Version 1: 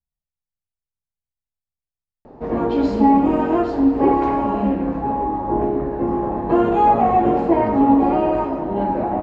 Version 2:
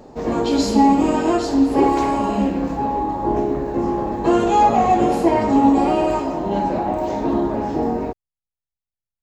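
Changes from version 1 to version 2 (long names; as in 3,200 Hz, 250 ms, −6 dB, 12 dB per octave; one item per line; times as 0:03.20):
background: entry −2.25 s
master: remove low-pass filter 1,900 Hz 12 dB per octave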